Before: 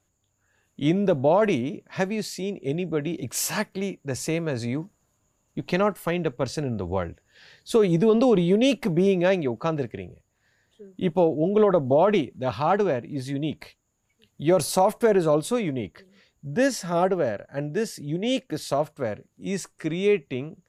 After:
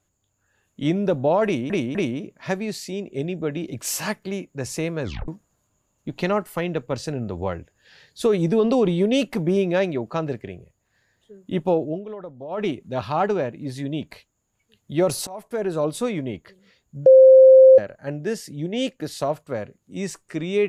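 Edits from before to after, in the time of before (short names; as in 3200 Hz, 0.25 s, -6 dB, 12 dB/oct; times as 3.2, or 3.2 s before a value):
1.45–1.7 loop, 3 plays
4.53 tape stop 0.25 s
11.31–12.24 dip -16.5 dB, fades 0.25 s
14.77–15.5 fade in linear, from -23.5 dB
16.56–17.28 bleep 525 Hz -6 dBFS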